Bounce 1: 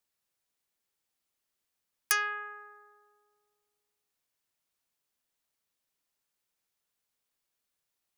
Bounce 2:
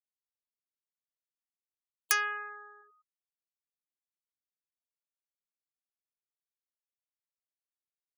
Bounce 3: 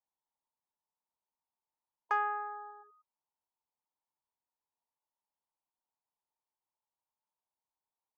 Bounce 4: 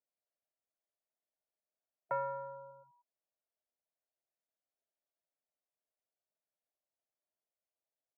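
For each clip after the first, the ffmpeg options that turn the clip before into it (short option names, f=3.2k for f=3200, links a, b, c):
-af "afftfilt=real='re*gte(hypot(re,im),0.00562)':imag='im*gte(hypot(re,im),0.00562)':win_size=1024:overlap=0.75"
-af "lowpass=f=920:t=q:w=7.7"
-af "highpass=f=460:t=q:w=0.5412,highpass=f=460:t=q:w=1.307,lowpass=f=2.5k:t=q:w=0.5176,lowpass=f=2.5k:t=q:w=0.7071,lowpass=f=2.5k:t=q:w=1.932,afreqshift=-280,volume=-4.5dB"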